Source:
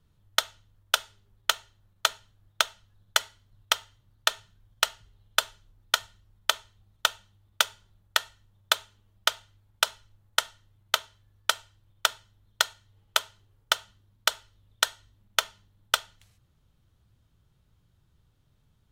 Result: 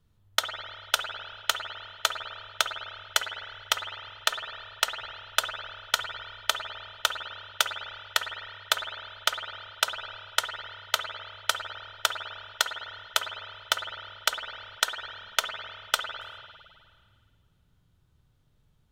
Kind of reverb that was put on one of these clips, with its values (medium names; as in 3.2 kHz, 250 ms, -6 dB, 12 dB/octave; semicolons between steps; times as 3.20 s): spring tank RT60 2 s, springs 50/54 ms, chirp 65 ms, DRR 4.5 dB; trim -1.5 dB